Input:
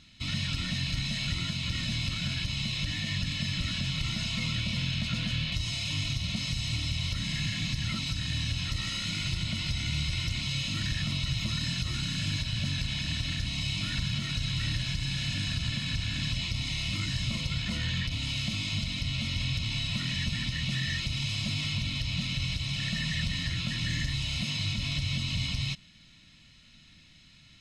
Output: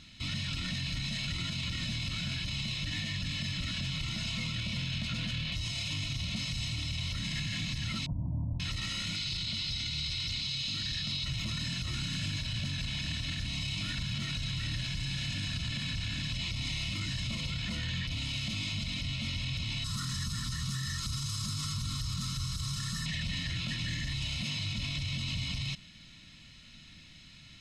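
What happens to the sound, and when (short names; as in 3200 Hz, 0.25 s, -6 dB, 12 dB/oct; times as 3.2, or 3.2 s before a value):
8.06–8.6 Chebyshev low-pass 960 Hz, order 6
9.16–11.25 bell 4300 Hz +11.5 dB 0.97 oct
19.84–23.06 EQ curve 130 Hz 0 dB, 780 Hz -15 dB, 1200 Hz +11 dB, 2400 Hz -16 dB, 5200 Hz +3 dB, 11000 Hz +12 dB
whole clip: limiter -29.5 dBFS; gain +3 dB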